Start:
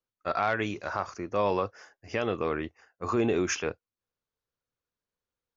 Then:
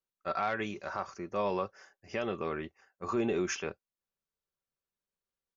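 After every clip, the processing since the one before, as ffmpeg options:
ffmpeg -i in.wav -af "aecho=1:1:5.2:0.4,volume=-5.5dB" out.wav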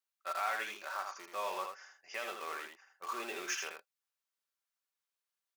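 ffmpeg -i in.wav -filter_complex "[0:a]asplit=2[link_01][link_02];[link_02]aeval=exprs='(mod(63.1*val(0)+1,2)-1)/63.1':channel_layout=same,volume=-10.5dB[link_03];[link_01][link_03]amix=inputs=2:normalize=0,highpass=920,aecho=1:1:81:0.531,volume=-1dB" out.wav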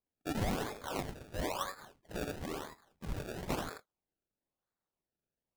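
ffmpeg -i in.wav -af "agate=range=-6dB:threshold=-56dB:ratio=16:detection=peak,highpass=510,acrusher=samples=29:mix=1:aa=0.000001:lfo=1:lforange=29:lforate=1,volume=2dB" out.wav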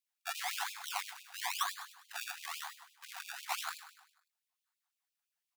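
ffmpeg -i in.wav -filter_complex "[0:a]aeval=exprs='0.0473*(abs(mod(val(0)/0.0473+3,4)-2)-1)':channel_layout=same,asplit=2[link_01][link_02];[link_02]aecho=0:1:101|202|303|404|505:0.251|0.126|0.0628|0.0314|0.0157[link_03];[link_01][link_03]amix=inputs=2:normalize=0,afftfilt=real='re*gte(b*sr/1024,670*pow(2400/670,0.5+0.5*sin(2*PI*5.9*pts/sr)))':imag='im*gte(b*sr/1024,670*pow(2400/670,0.5+0.5*sin(2*PI*5.9*pts/sr)))':win_size=1024:overlap=0.75,volume=5.5dB" out.wav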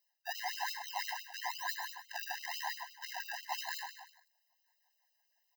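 ffmpeg -i in.wav -af "firequalizer=gain_entry='entry(1500,0);entry(3600,-6);entry(5100,2);entry(10000,-20);entry(15000,2)':delay=0.05:min_phase=1,areverse,acompressor=threshold=-48dB:ratio=8,areverse,afftfilt=real='re*eq(mod(floor(b*sr/1024/530),2),1)':imag='im*eq(mod(floor(b*sr/1024/530),2),1)':win_size=1024:overlap=0.75,volume=15dB" out.wav

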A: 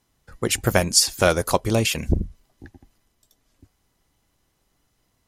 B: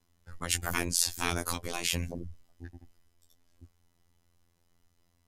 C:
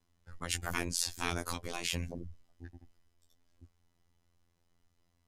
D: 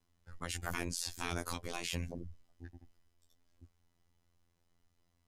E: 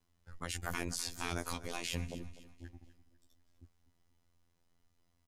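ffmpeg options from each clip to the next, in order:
ffmpeg -i in.wav -af "afftfilt=real='re*lt(hypot(re,im),0.316)':imag='im*lt(hypot(re,im),0.316)':win_size=1024:overlap=0.75,lowshelf=frequency=83:gain=10.5,afftfilt=real='hypot(re,im)*cos(PI*b)':imag='0':win_size=2048:overlap=0.75,volume=-2.5dB" out.wav
ffmpeg -i in.wav -af "highshelf=frequency=11000:gain=-10.5,volume=-3.5dB" out.wav
ffmpeg -i in.wav -af "alimiter=limit=-17dB:level=0:latency=1:release=13,volume=-1.5dB" out.wav
ffmpeg -i in.wav -af "aecho=1:1:248|496|744|992:0.158|0.065|0.0266|0.0109" out.wav

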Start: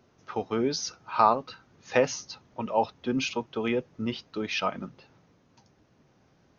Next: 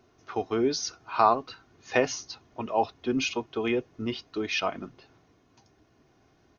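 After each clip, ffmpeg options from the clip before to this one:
ffmpeg -i in.wav -af "aecho=1:1:2.8:0.46" out.wav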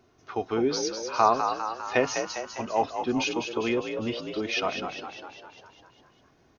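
ffmpeg -i in.wav -filter_complex "[0:a]asplit=9[link_01][link_02][link_03][link_04][link_05][link_06][link_07][link_08][link_09];[link_02]adelay=201,afreqshift=53,volume=-7dB[link_10];[link_03]adelay=402,afreqshift=106,volume=-11.6dB[link_11];[link_04]adelay=603,afreqshift=159,volume=-16.2dB[link_12];[link_05]adelay=804,afreqshift=212,volume=-20.7dB[link_13];[link_06]adelay=1005,afreqshift=265,volume=-25.3dB[link_14];[link_07]adelay=1206,afreqshift=318,volume=-29.9dB[link_15];[link_08]adelay=1407,afreqshift=371,volume=-34.5dB[link_16];[link_09]adelay=1608,afreqshift=424,volume=-39.1dB[link_17];[link_01][link_10][link_11][link_12][link_13][link_14][link_15][link_16][link_17]amix=inputs=9:normalize=0" out.wav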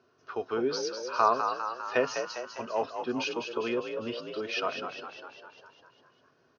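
ffmpeg -i in.wav -af "highpass=190,equalizer=frequency=200:width_type=q:width=4:gain=-8,equalizer=frequency=310:width_type=q:width=4:gain=-9,equalizer=frequency=780:width_type=q:width=4:gain=-9,equalizer=frequency=1500:width_type=q:width=4:gain=3,equalizer=frequency=2100:width_type=q:width=4:gain=-10,equalizer=frequency=3600:width_type=q:width=4:gain=-7,lowpass=frequency=5100:width=0.5412,lowpass=frequency=5100:width=1.3066" out.wav

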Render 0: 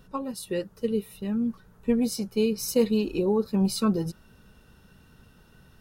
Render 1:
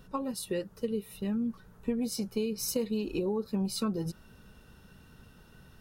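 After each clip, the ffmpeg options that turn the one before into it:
ffmpeg -i in.wav -af "acompressor=threshold=-29dB:ratio=4" out.wav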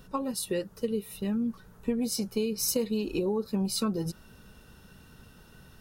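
ffmpeg -i in.wav -af "bass=frequency=250:gain=-1,treble=frequency=4000:gain=3,volume=2.5dB" out.wav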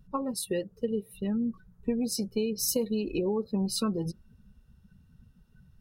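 ffmpeg -i in.wav -af "afftdn=noise_reduction=20:noise_floor=-42" out.wav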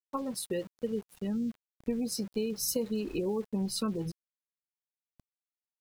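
ffmpeg -i in.wav -af "aeval=exprs='val(0)*gte(abs(val(0)),0.00562)':channel_layout=same,volume=-3dB" out.wav

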